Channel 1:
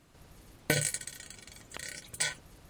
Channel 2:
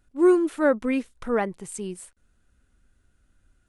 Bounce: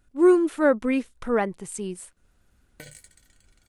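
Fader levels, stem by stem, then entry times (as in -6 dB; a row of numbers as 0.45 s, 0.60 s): -16.5 dB, +1.0 dB; 2.10 s, 0.00 s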